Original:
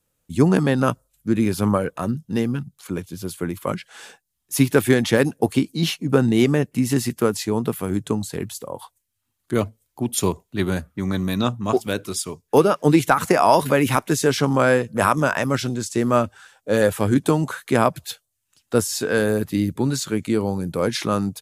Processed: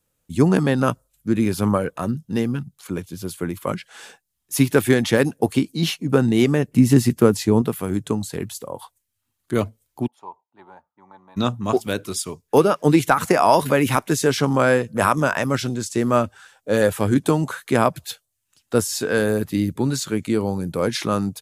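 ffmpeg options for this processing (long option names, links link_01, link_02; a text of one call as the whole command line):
ffmpeg -i in.wav -filter_complex "[0:a]asettb=1/sr,asplit=3[link_01][link_02][link_03];[link_01]atrim=end=6.684[link_04];[link_02]atrim=start=6.68:end=7.62,asetpts=PTS-STARTPTS,afade=type=in:duration=0.004:curve=qsin,afade=type=out:start_time=0.936:duration=0.004:curve=qsin,lowshelf=frequency=480:gain=8[link_05];[link_03]atrim=start=7.616[link_06];[link_04][link_05]acrossfade=duration=0.004:curve1=hsin:curve2=qsin[link_07];[link_07][link_06]acrossfade=duration=0.004:curve1=qsin:curve2=hsin,asplit=3[link_08][link_09][link_10];[link_08]afade=type=out:start_time=10.06:duration=0.02[link_11];[link_09]bandpass=frequency=880:width_type=q:width=10,afade=type=in:start_time=10.06:duration=0.02,afade=type=out:start_time=11.36:duration=0.02[link_12];[link_10]afade=type=in:start_time=11.36:duration=0.02[link_13];[link_11][link_12][link_13]amix=inputs=3:normalize=0" out.wav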